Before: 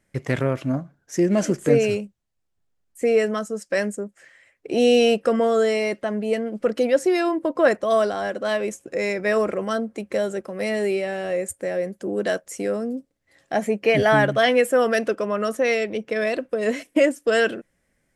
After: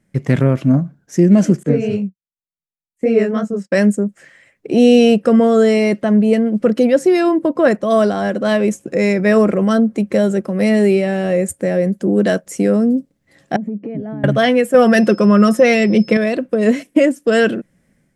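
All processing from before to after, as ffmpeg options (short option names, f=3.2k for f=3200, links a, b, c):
-filter_complex "[0:a]asettb=1/sr,asplit=3[a][b][c];[a]atrim=end=1.634[d];[b]atrim=start=1.63:end=3.72,asetpts=PTS-STARTPTS,afade=t=in:d=0.004:c=qsin,afade=t=out:st=2.086:d=0.004:c=qsin,agate=range=-33dB:threshold=-36dB:ratio=3:release=100:detection=peak,aemphasis=mode=reproduction:type=50fm,flanger=delay=18:depth=7.9:speed=2.7[e];[c]atrim=start=3.716[f];[d][e]acrossfade=d=0.004:c1=hsin:c2=qsin[g];[g][f]acrossfade=d=0.004:c1=qsin:c2=hsin,asettb=1/sr,asplit=3[h][i][j];[h]atrim=end=13.564[k];[i]atrim=start=13.56:end=14.24,asetpts=PTS-STARTPTS,afade=t=in:d=0.004:c=qsin,afade=t=out:st=0.676:d=0.004:c=qsin,bandpass=f=250:t=q:w=1.5,acompressor=threshold=-36dB:ratio=4:attack=3.2:release=140:knee=1:detection=peak[l];[j]atrim=start=14.236[m];[k][l]acrossfade=d=0.004:c1=hsin:c2=qsin[n];[n][m]acrossfade=d=0.004:c1=qsin:c2=hsin,asettb=1/sr,asplit=3[o][p][q];[o]atrim=end=14.744[r];[p]atrim=start=14.74:end=16.17,asetpts=PTS-STARTPTS,afade=t=in:d=0.004:c=qsin,afade=t=out:st=1.426:d=0.004:c=qsin,aecho=1:1:5.6:0.45,atrim=end_sample=63063,aeval=exprs='val(0)+0.00398*sin(2*PI*5200*n/s)':c=same,acontrast=68[s];[q]atrim=start=16.166[t];[r][s]acrossfade=d=0.004:c1=hsin:c2=qsin[u];[u][t]acrossfade=d=0.004:c1=qsin:c2=hsin,equalizer=f=180:t=o:w=1.5:g=12.5,dynaudnorm=f=100:g=5:m=5.5dB"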